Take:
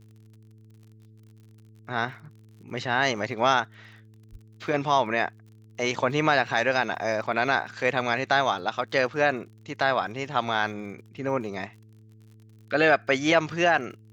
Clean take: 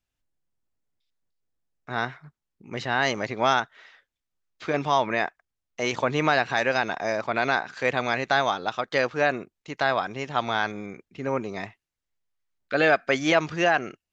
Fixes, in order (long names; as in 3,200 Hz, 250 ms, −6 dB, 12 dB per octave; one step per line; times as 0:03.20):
click removal
hum removal 109 Hz, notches 4
0:04.31–0:04.43: high-pass filter 140 Hz 24 dB per octave